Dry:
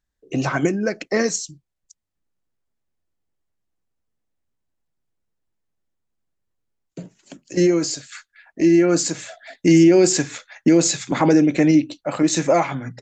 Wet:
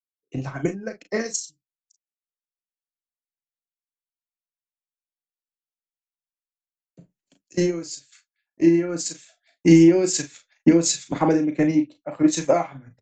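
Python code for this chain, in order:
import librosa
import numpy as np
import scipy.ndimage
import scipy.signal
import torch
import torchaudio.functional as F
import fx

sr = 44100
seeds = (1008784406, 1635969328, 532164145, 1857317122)

p1 = fx.transient(x, sr, attack_db=6, sustain_db=-5)
p2 = p1 + fx.room_early_taps(p1, sr, ms=(36, 46), db=(-8.5, -14.0), dry=0)
p3 = fx.band_widen(p2, sr, depth_pct=100)
y = F.gain(torch.from_numpy(p3), -8.0).numpy()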